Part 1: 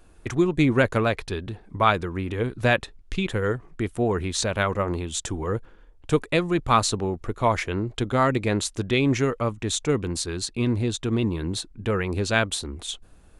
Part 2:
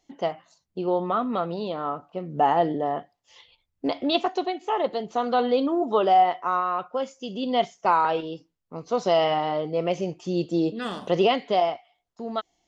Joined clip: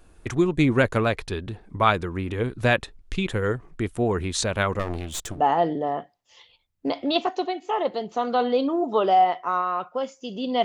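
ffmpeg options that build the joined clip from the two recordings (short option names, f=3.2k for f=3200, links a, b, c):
-filter_complex "[0:a]asettb=1/sr,asplit=3[a][b][c];[a]atrim=end=4.794[d];[b]atrim=start=4.79:end=5.43,asetpts=PTS-STARTPTS,afade=t=in:d=0.004:c=qsin,afade=t=out:st=0.636:d=0.004:c=qsin,aeval=exprs='clip(val(0),-1,0.015)':c=same[e];[c]atrim=start=5.426[f];[d][e]acrossfade=d=0.004:c1=hsin:c2=qsin[g];[g][f]acrossfade=d=0.004:c1=qsin:c2=hsin,apad=whole_dur=10.64,atrim=end=10.64,atrim=end=5.43,asetpts=PTS-STARTPTS[h];[1:a]atrim=start=2.3:end=7.63,asetpts=PTS-STARTPTS[i];[h][i]acrossfade=d=0.12:c1=tri:c2=tri"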